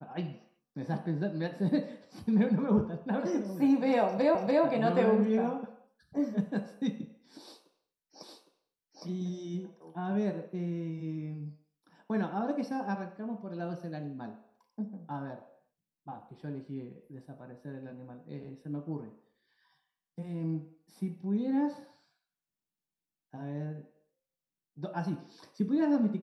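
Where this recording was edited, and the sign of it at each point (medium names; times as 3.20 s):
4.35 s: repeat of the last 0.29 s
8.23 s: repeat of the last 0.81 s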